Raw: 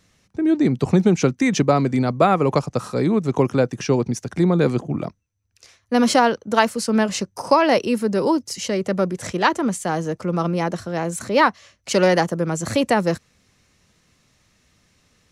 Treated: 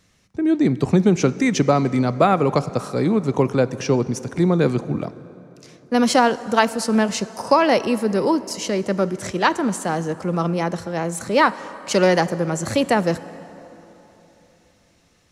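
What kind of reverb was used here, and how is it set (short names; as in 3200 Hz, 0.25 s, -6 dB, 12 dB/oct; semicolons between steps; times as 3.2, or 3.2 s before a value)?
plate-style reverb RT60 3.6 s, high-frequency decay 0.6×, DRR 15 dB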